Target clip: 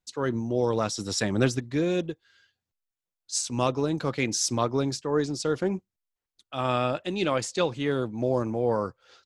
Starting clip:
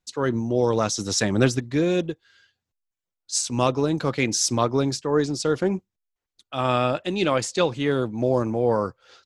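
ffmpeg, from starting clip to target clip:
-filter_complex "[0:a]asettb=1/sr,asplit=3[s0][s1][s2];[s0]atrim=end=0.654[s3];[s1]atrim=start=0.65:end=1.25,asetpts=PTS-STARTPTS,afade=t=in:d=0.004:c=qsin,afade=t=out:st=0.596:d=0.004:c=qsin,bandreject=f=6300:w=7.1[s4];[s2]atrim=start=1.246[s5];[s3][s4]acrossfade=d=0.004:c1=hsin:c2=qsin[s6];[s6][s5]acrossfade=d=0.004:c1=qsin:c2=hsin,volume=0.631"

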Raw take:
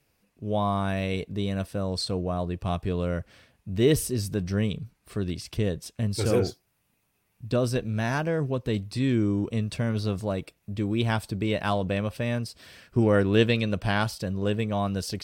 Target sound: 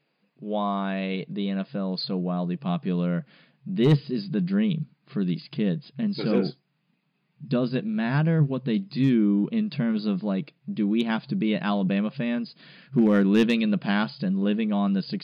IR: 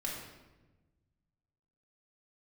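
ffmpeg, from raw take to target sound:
-af "afftfilt=real='re*between(b*sr/4096,130,5000)':imag='im*between(b*sr/4096,130,5000)':win_size=4096:overlap=0.75,asubboost=boost=4.5:cutoff=210,volume=3.98,asoftclip=hard,volume=0.251"

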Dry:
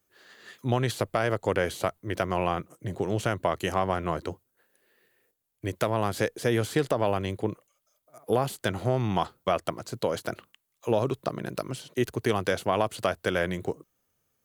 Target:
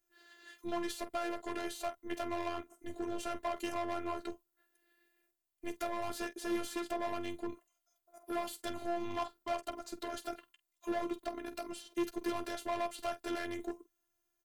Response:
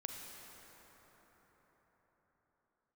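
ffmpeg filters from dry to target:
-af "aecho=1:1:11|48:0.355|0.168,volume=14.1,asoftclip=hard,volume=0.0708,afftfilt=real='hypot(re,im)*cos(PI*b)':imag='0':win_size=512:overlap=0.75,volume=0.596"

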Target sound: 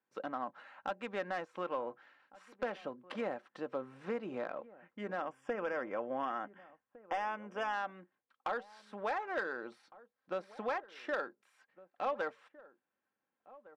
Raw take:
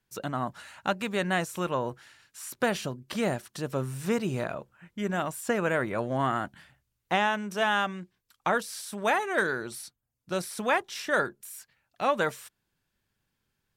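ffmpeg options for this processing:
-filter_complex "[0:a]highpass=390,equalizer=f=12000:t=o:w=2.7:g=-11,aecho=1:1:3.8:0.38,acompressor=threshold=0.0178:ratio=2,volume=17.8,asoftclip=hard,volume=0.0562,adynamicsmooth=sensitivity=3:basefreq=2400,asplit=3[s0][s1][s2];[s0]afade=t=out:st=5.19:d=0.02[s3];[s1]asuperstop=centerf=4100:order=8:qfactor=3.3,afade=t=in:st=5.19:d=0.02,afade=t=out:st=7.72:d=0.02[s4];[s2]afade=t=in:st=7.72:d=0.02[s5];[s3][s4][s5]amix=inputs=3:normalize=0,asplit=2[s6][s7];[s7]adelay=1458,volume=0.112,highshelf=f=4000:g=-32.8[s8];[s6][s8]amix=inputs=2:normalize=0,volume=0.841"

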